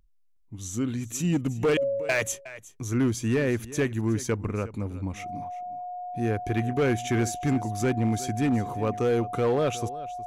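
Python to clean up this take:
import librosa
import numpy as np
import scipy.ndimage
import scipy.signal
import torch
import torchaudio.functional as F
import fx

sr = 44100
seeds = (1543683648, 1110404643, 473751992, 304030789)

y = fx.fix_declip(x, sr, threshold_db=-18.5)
y = fx.notch(y, sr, hz=720.0, q=30.0)
y = fx.fix_echo_inverse(y, sr, delay_ms=364, level_db=-17.5)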